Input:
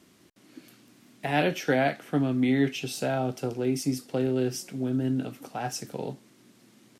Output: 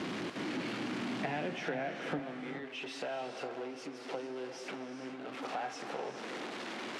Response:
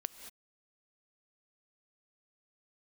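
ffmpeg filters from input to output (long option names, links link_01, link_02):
-filter_complex "[0:a]aeval=exprs='val(0)+0.5*0.0316*sgn(val(0))':channel_layout=same,acompressor=threshold=-33dB:ratio=10,asetnsamples=nb_out_samples=441:pad=0,asendcmd='2.19 highpass f 420',highpass=160,lowpass=2900[link_01];[1:a]atrim=start_sample=2205,asetrate=22932,aresample=44100[link_02];[link_01][link_02]afir=irnorm=-1:irlink=0,volume=-1.5dB"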